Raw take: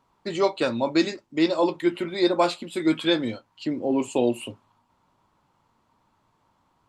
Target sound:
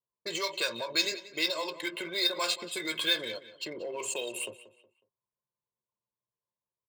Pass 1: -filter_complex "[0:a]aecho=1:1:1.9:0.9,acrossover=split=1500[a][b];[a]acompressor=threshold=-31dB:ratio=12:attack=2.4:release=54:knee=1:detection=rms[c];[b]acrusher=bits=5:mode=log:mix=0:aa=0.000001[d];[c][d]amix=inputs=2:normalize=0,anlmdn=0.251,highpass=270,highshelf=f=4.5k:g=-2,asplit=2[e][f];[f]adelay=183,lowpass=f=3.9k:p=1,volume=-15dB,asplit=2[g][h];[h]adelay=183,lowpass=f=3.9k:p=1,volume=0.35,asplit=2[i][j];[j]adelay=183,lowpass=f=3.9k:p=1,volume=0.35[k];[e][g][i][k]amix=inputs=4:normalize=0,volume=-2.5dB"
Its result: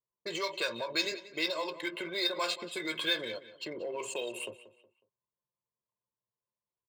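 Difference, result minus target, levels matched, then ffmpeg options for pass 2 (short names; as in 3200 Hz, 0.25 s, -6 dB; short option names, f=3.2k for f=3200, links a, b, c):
8000 Hz band -4.5 dB
-filter_complex "[0:a]aecho=1:1:1.9:0.9,acrossover=split=1500[a][b];[a]acompressor=threshold=-31dB:ratio=12:attack=2.4:release=54:knee=1:detection=rms[c];[b]acrusher=bits=5:mode=log:mix=0:aa=0.000001[d];[c][d]amix=inputs=2:normalize=0,anlmdn=0.251,highpass=270,highshelf=f=4.5k:g=7.5,asplit=2[e][f];[f]adelay=183,lowpass=f=3.9k:p=1,volume=-15dB,asplit=2[g][h];[h]adelay=183,lowpass=f=3.9k:p=1,volume=0.35,asplit=2[i][j];[j]adelay=183,lowpass=f=3.9k:p=1,volume=0.35[k];[e][g][i][k]amix=inputs=4:normalize=0,volume=-2.5dB"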